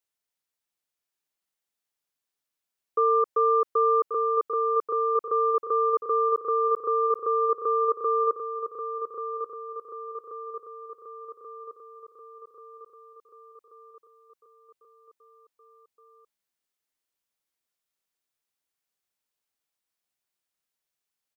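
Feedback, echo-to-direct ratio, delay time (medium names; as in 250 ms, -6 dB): 58%, -6.0 dB, 1134 ms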